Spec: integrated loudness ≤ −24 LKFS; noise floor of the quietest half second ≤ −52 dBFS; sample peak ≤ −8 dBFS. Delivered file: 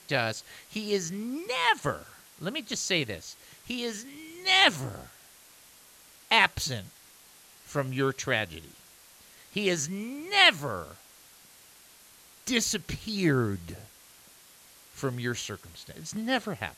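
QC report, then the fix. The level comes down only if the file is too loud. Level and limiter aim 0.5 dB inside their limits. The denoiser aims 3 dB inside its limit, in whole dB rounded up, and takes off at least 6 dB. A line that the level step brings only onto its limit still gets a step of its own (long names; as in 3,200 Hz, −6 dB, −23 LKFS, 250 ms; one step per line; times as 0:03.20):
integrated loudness −27.5 LKFS: in spec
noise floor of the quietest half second −55 dBFS: in spec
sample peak −6.5 dBFS: out of spec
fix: brickwall limiter −8.5 dBFS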